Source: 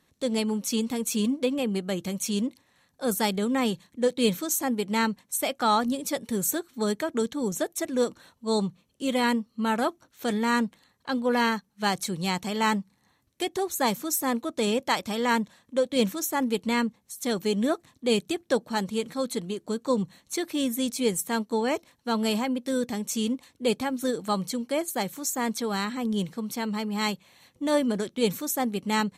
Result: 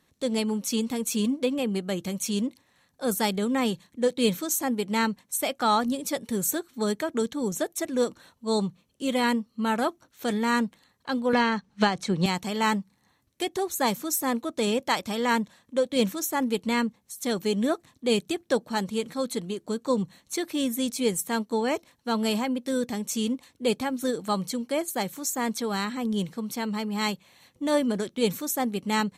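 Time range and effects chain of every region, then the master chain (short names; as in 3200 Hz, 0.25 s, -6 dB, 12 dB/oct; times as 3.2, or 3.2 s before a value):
11.33–12.26 transient shaper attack +6 dB, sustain +1 dB + air absorption 91 m + three-band squash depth 100%
whole clip: dry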